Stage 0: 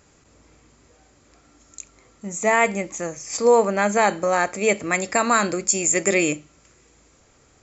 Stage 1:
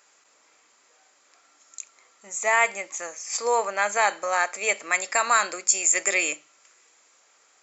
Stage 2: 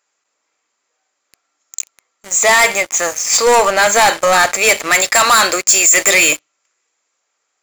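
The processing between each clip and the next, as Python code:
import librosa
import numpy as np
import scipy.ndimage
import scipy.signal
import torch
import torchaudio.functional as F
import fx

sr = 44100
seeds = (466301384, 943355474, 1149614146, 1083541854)

y1 = scipy.signal.sosfilt(scipy.signal.butter(2, 830.0, 'highpass', fs=sr, output='sos'), x)
y2 = fx.dynamic_eq(y1, sr, hz=3800.0, q=3.0, threshold_db=-45.0, ratio=4.0, max_db=6)
y2 = fx.leveller(y2, sr, passes=5)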